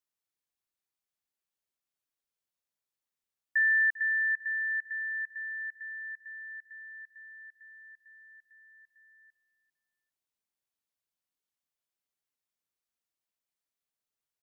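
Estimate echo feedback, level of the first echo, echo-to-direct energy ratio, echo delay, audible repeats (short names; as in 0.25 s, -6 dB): 27%, -18.0 dB, -17.5 dB, 0.397 s, 2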